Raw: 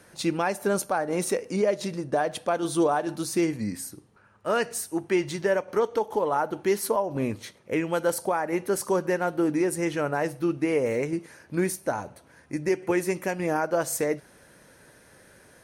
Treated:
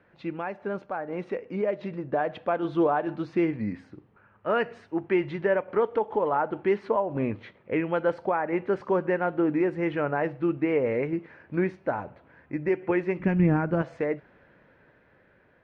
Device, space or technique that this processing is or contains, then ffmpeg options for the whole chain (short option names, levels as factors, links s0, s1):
action camera in a waterproof case: -filter_complex "[0:a]asplit=3[s0][s1][s2];[s0]afade=t=out:st=13.19:d=0.02[s3];[s1]asubboost=boost=9.5:cutoff=190,afade=t=in:st=13.19:d=0.02,afade=t=out:st=13.81:d=0.02[s4];[s2]afade=t=in:st=13.81:d=0.02[s5];[s3][s4][s5]amix=inputs=3:normalize=0,lowpass=f=2700:w=0.5412,lowpass=f=2700:w=1.3066,dynaudnorm=f=400:g=9:m=2.24,volume=0.447" -ar 48000 -c:a aac -b:a 128k